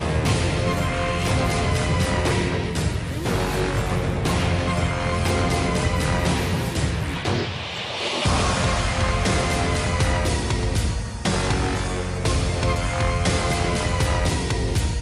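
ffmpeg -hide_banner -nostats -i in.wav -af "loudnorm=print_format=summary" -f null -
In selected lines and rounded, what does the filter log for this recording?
Input Integrated:    -22.7 LUFS
Input True Peak:     -10.1 dBTP
Input LRA:             1.0 LU
Input Threshold:     -32.7 LUFS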